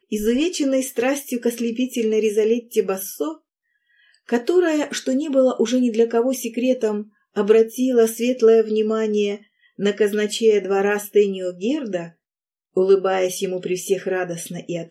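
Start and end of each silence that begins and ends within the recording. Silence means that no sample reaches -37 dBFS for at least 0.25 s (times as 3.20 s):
3.36–4.29 s
7.03–7.36 s
9.37–9.79 s
12.09–12.77 s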